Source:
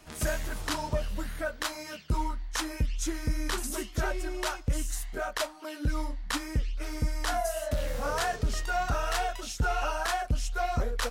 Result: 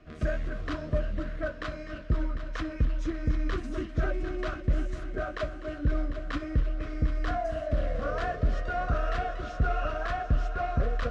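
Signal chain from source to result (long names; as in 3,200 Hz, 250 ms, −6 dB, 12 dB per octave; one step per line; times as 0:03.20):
Butterworth band-reject 880 Hz, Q 3
head-to-tape spacing loss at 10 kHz 36 dB
on a send: echo machine with several playback heads 250 ms, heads all three, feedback 62%, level −15 dB
on the sum: level +2.5 dB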